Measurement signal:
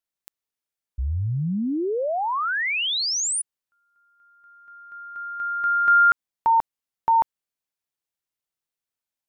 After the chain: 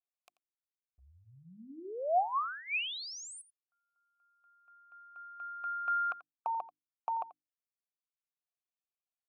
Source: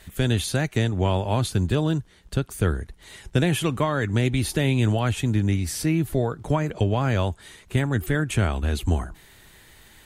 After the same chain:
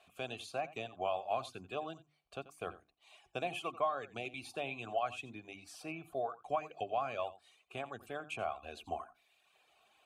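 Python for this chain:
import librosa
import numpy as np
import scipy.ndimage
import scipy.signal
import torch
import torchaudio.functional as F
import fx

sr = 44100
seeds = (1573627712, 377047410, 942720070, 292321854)

p1 = fx.dereverb_blind(x, sr, rt60_s=1.0)
p2 = fx.vowel_filter(p1, sr, vowel='a')
p3 = fx.high_shelf(p2, sr, hz=4100.0, db=9.5)
p4 = fx.hum_notches(p3, sr, base_hz=50, count=7)
y = p4 + fx.echo_single(p4, sr, ms=87, db=-17.0, dry=0)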